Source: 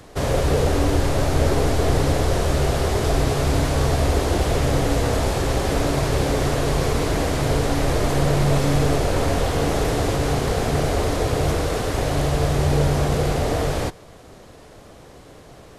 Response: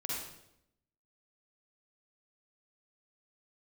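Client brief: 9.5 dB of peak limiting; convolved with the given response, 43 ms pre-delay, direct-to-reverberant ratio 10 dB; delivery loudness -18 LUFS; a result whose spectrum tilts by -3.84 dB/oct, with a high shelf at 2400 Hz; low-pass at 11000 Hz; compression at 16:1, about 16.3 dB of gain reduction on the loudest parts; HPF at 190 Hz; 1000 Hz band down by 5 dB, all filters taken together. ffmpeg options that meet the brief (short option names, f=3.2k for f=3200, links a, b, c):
-filter_complex "[0:a]highpass=190,lowpass=11k,equalizer=f=1k:t=o:g=-8,highshelf=f=2.4k:g=4,acompressor=threshold=-36dB:ratio=16,alimiter=level_in=10.5dB:limit=-24dB:level=0:latency=1,volume=-10.5dB,asplit=2[a][b];[1:a]atrim=start_sample=2205,adelay=43[c];[b][c]afir=irnorm=-1:irlink=0,volume=-12.5dB[d];[a][d]amix=inputs=2:normalize=0,volume=25dB"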